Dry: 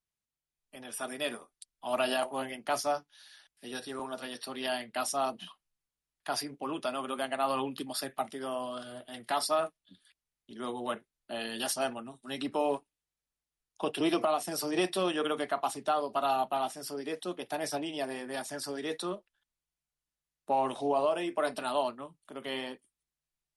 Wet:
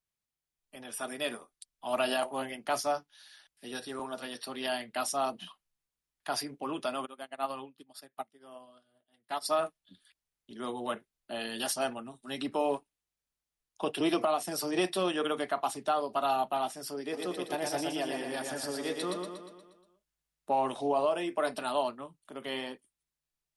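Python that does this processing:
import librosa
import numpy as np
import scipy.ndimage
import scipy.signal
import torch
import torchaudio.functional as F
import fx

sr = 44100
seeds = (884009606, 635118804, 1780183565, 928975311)

y = fx.upward_expand(x, sr, threshold_db=-44.0, expansion=2.5, at=(7.05, 9.44), fade=0.02)
y = fx.echo_feedback(y, sr, ms=119, feedback_pct=54, wet_db=-4, at=(17.12, 20.55), fade=0.02)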